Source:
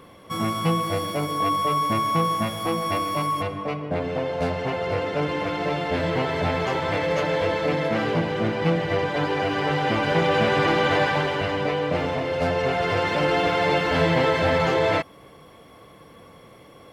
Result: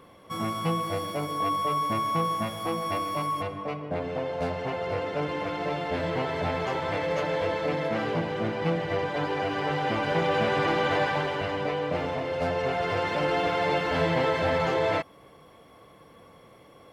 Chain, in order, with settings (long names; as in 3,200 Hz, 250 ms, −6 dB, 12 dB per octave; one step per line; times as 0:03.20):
parametric band 780 Hz +2.5 dB 1.8 octaves
level −6 dB